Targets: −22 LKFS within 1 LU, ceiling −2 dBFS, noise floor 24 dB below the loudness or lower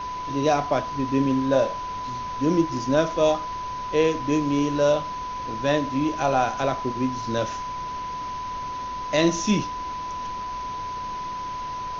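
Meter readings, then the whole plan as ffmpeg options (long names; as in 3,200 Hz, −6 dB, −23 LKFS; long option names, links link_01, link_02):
interfering tone 1,000 Hz; level of the tone −29 dBFS; background noise floor −32 dBFS; target noise floor −49 dBFS; integrated loudness −25.0 LKFS; sample peak −7.0 dBFS; target loudness −22.0 LKFS
→ -af "bandreject=frequency=1000:width=30"
-af "afftdn=noise_reduction=17:noise_floor=-32"
-af "volume=3dB"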